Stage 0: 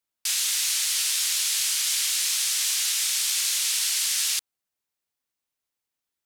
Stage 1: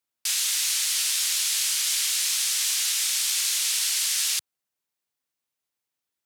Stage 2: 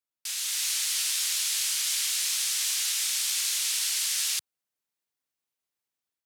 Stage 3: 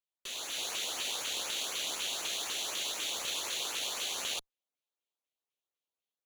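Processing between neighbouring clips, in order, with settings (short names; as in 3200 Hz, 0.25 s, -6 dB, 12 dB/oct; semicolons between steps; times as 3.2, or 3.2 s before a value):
HPF 76 Hz
AGC gain up to 5.5 dB; gain -8.5 dB
minimum comb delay 0.3 ms; three-band isolator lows -18 dB, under 340 Hz, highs -13 dB, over 4900 Hz; LFO notch saw up 4 Hz 680–4200 Hz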